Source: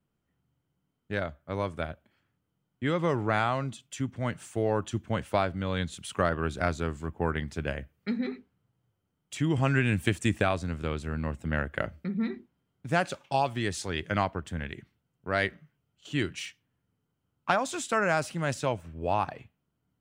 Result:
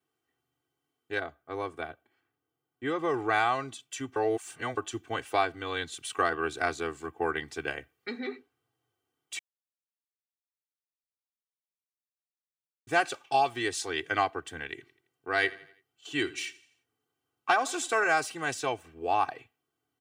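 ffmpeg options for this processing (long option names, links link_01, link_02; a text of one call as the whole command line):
ffmpeg -i in.wav -filter_complex "[0:a]asettb=1/sr,asplit=3[link_01][link_02][link_03];[link_01]atrim=end=1.194[link_04];[link_02]atrim=start=1.19:end=3.14,asetpts=PTS-STARTPTS,afade=type=in:duration=0.004:curve=qsin,afade=type=out:start_time=1.946:duration=0.004:curve=qsin,equalizer=frequency=5400:width=0.32:gain=-7[link_05];[link_03]atrim=start=3.136[link_06];[link_04][link_05]acrossfade=duration=0.004:curve1=hsin:curve2=qsin[link_07];[link_07][link_06]acrossfade=duration=0.004:curve1=qsin:curve2=hsin,asettb=1/sr,asplit=3[link_08][link_09][link_10];[link_08]atrim=end=14.724[link_11];[link_09]atrim=start=14.72:end=18.14,asetpts=PTS-STARTPTS,afade=type=in:duration=0.004:curve=qsin,afade=type=out:start_time=3.416:duration=0.004:curve=qsin,aecho=1:1:84|168|252|336:0.106|0.0487|0.0224|0.0103,atrim=end_sample=150822[link_12];[link_10]atrim=start=18.136[link_13];[link_11][link_12]acrossfade=duration=0.004:curve1=hsin:curve2=qsin[link_14];[link_14][link_13]acrossfade=duration=0.004:curve1=qsin:curve2=hsin,asplit=5[link_15][link_16][link_17][link_18][link_19];[link_15]atrim=end=4.162[link_20];[link_16]atrim=start=4.158:end=4.772,asetpts=PTS-STARTPTS,areverse[link_21];[link_17]atrim=start=4.768:end=9.39,asetpts=PTS-STARTPTS,afade=type=out:start_time=4.618:duration=0.004:curve=hsin[link_22];[link_18]atrim=start=9.39:end=12.87,asetpts=PTS-STARTPTS,volume=0[link_23];[link_19]atrim=start=12.87,asetpts=PTS-STARTPTS,afade=type=in:duration=0.004:curve=hsin[link_24];[link_20][link_21]acrossfade=duration=0.004:curve1=hsin:curve2=hsin[link_25];[link_22][link_23][link_24]concat=n=3:v=0:a=1[link_26];[link_25][link_26]acrossfade=duration=0.004:curve1=hsin:curve2=hsin,highpass=150,lowshelf=frequency=370:gain=-8,aecho=1:1:2.6:0.92" out.wav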